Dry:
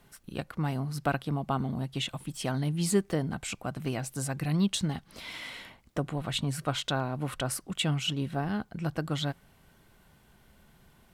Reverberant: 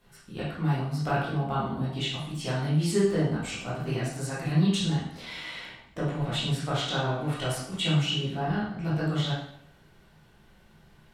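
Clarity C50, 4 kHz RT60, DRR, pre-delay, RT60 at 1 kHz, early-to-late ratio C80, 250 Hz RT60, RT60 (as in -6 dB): 1.0 dB, 0.60 s, -9.5 dB, 7 ms, 0.65 s, 5.5 dB, 0.60 s, 0.65 s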